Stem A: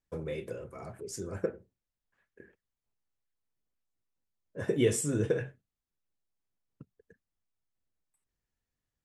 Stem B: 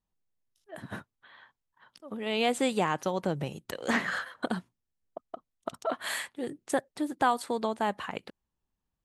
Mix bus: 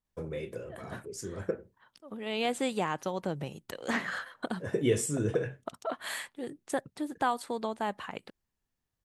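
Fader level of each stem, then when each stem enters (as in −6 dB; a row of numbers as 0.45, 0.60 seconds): −0.5, −3.5 decibels; 0.05, 0.00 seconds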